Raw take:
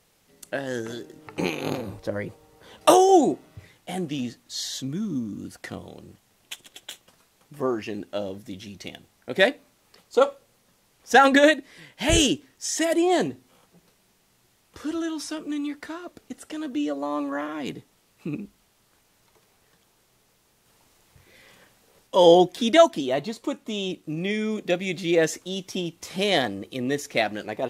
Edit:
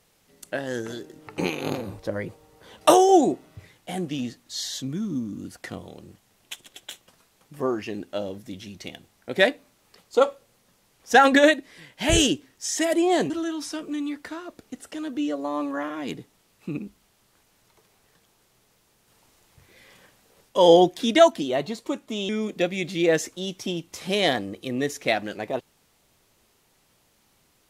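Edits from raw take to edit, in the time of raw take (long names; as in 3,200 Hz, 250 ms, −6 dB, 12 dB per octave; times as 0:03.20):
0:13.30–0:14.88: remove
0:23.87–0:24.38: remove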